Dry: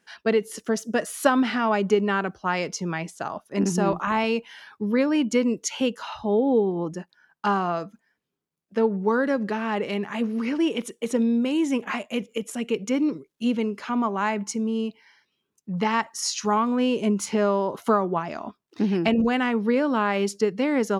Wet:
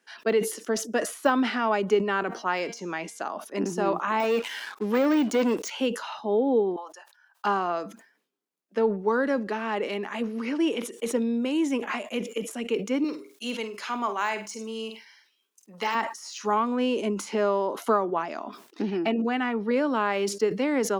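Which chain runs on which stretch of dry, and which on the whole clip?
2.26–3.23 de-hum 233 Hz, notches 36 + upward compressor, threshold -34 dBFS
4.2–5.7 HPF 54 Hz + low shelf 400 Hz -8 dB + sample leveller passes 3
6.76–7.45 HPF 730 Hz 24 dB/oct + bell 2100 Hz -8 dB 0.21 oct
13.04–15.95 HPF 550 Hz 6 dB/oct + high shelf 2700 Hz +9.5 dB + flutter echo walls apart 8.5 m, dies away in 0.25 s
18.82–19.71 high shelf 6100 Hz -11 dB + notch comb 530 Hz
whole clip: de-esser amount 80%; HPF 240 Hz 24 dB/oct; sustainer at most 110 dB/s; gain -1.5 dB

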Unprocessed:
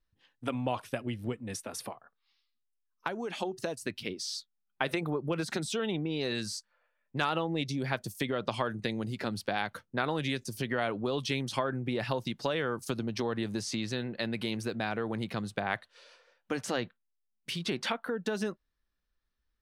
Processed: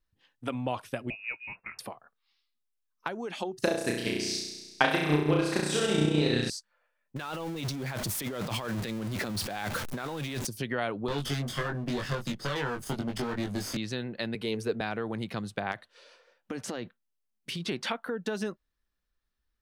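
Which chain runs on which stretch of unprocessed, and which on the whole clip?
1.1–1.79 low shelf 160 Hz -8 dB + inverted band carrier 2700 Hz
3.59–6.5 flutter echo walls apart 5.7 m, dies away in 1.4 s + transient shaper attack +8 dB, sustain -7 dB
7.16–10.47 zero-crossing step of -33 dBFS + negative-ratio compressor -34 dBFS
11.08–13.77 minimum comb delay 0.61 ms + doubler 21 ms -3 dB + three-band squash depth 40%
14.35–14.81 bell 440 Hz +13 dB 0.21 oct + three-band expander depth 40%
15.71–17.68 bell 300 Hz +4.5 dB 2.1 oct + compressor 5:1, threshold -31 dBFS + hard clip -21.5 dBFS
whole clip: dry

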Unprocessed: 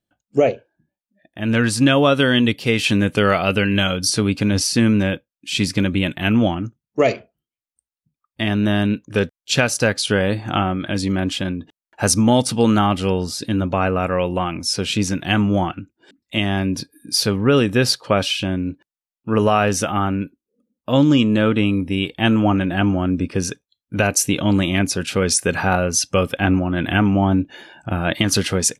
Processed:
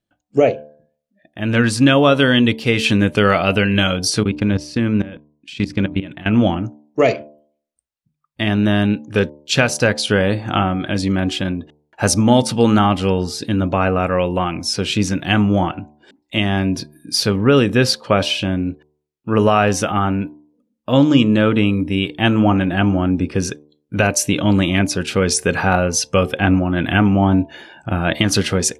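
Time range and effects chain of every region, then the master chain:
4.23–6.33 LPF 3200 Hz 6 dB/oct + level quantiser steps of 18 dB
whole clip: high shelf 7600 Hz -7 dB; de-hum 74.53 Hz, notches 14; gain +2.5 dB

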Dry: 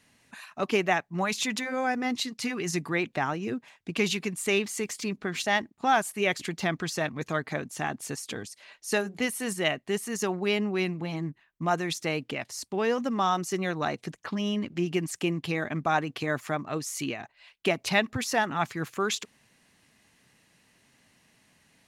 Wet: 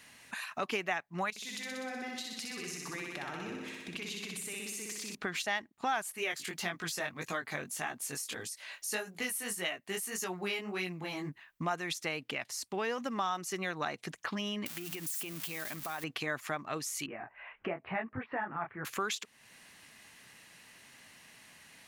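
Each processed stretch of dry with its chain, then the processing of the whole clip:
1.3–5.15 bell 1100 Hz -6 dB 1.5 oct + compressor, threshold -41 dBFS + flutter echo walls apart 10.6 m, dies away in 1.2 s
6.16–11.29 high shelf 8600 Hz +10 dB + chorus 1.7 Hz, delay 16.5 ms, depth 5.1 ms
14.66–16.04 switching spikes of -24.5 dBFS + notches 60/120/180/240 Hz + compressor 12:1, threshold -33 dBFS
17.06–18.85 Bessel low-pass 1300 Hz, order 8 + upward compressor, threshold -41 dBFS + detuned doubles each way 31 cents
whole clip: tilt shelf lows -6.5 dB, about 780 Hz; compressor 2.5:1, threshold -43 dBFS; bell 6200 Hz -5 dB 2.4 oct; gain +6 dB

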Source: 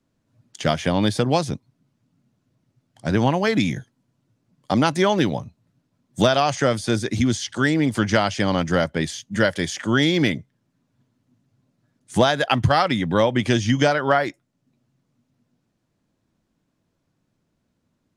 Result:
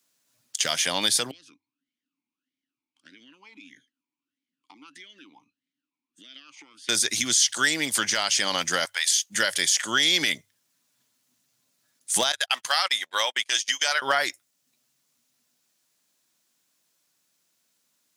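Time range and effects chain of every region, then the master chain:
1.31–6.89 compressor 12:1, threshold -27 dBFS + vowel sweep i-u 1.6 Hz
8.85–9.3 HPF 790 Hz 24 dB/oct + short-mantissa float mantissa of 8-bit
12.32–14.02 gate -23 dBFS, range -36 dB + HPF 740 Hz
whole clip: differentiator; notches 50/100 Hz; maximiser +23.5 dB; gain -9 dB

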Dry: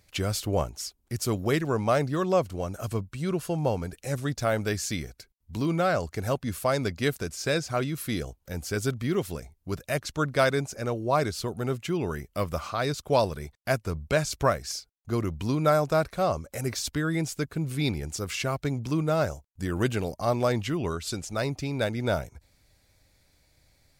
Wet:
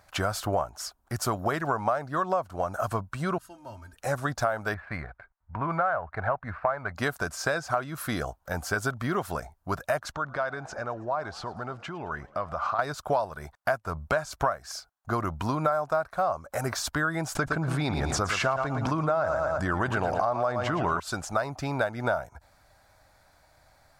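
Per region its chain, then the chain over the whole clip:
3.38–3.96 passive tone stack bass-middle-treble 6-0-2 + comb 3.2 ms, depth 99% + de-hum 127.8 Hz, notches 28
4.74–6.95 steep low-pass 2400 Hz 48 dB/oct + bell 290 Hz -9 dB 1.5 oct + running maximum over 3 samples
10.12–12.79 LPF 4600 Hz + compressor 4:1, threshold -37 dBFS + frequency-shifting echo 0.108 s, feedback 64%, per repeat +67 Hz, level -23 dB
17.35–21 air absorption 55 m + feedback echo 0.114 s, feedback 36%, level -11 dB + fast leveller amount 70%
whole clip: band shelf 1000 Hz +14.5 dB; compressor 6:1, threshold -24 dBFS

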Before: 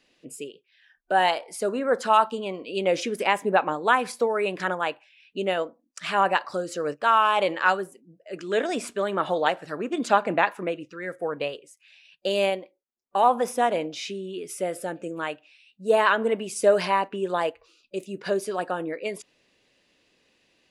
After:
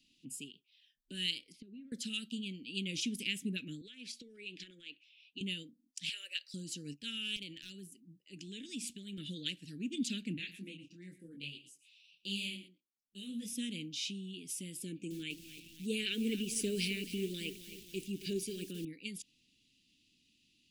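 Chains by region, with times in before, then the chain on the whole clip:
1.52–1.92 air absorption 350 m + compressor 12:1, threshold -38 dBFS
3.81–5.41 three-band isolator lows -16 dB, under 310 Hz, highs -18 dB, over 6500 Hz + compressor, threshold -29 dBFS
6.09–6.54 elliptic high-pass 530 Hz, stop band 50 dB + de-esser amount 25%
7.36–9.18 compressor 2:1, threshold -33 dBFS + hard clip -22 dBFS
10.37–13.53 echo 0.114 s -14 dB + detuned doubles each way 31 cents
14.82–18.85 small resonant body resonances 400/880/2300 Hz, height 11 dB, ringing for 20 ms + lo-fi delay 0.268 s, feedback 55%, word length 6-bit, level -13 dB
whole clip: elliptic band-stop 270–2900 Hz, stop band 70 dB; dynamic EQ 350 Hz, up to -4 dB, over -51 dBFS, Q 1.6; gain -2.5 dB

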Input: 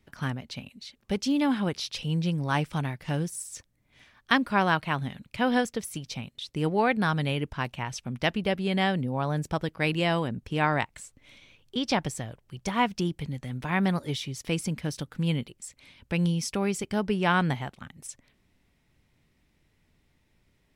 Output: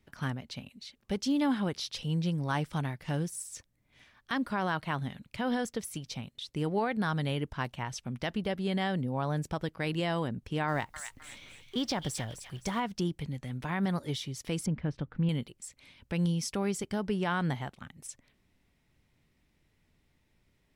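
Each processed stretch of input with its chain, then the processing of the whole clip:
10.68–12.8 G.711 law mismatch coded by mu + thin delay 0.259 s, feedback 33%, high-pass 1600 Hz, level -8.5 dB
14.66–15.29 LPF 2000 Hz + low shelf 120 Hz +7.5 dB
whole clip: dynamic EQ 2500 Hz, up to -6 dB, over -50 dBFS, Q 4.7; limiter -17.5 dBFS; gain -3 dB

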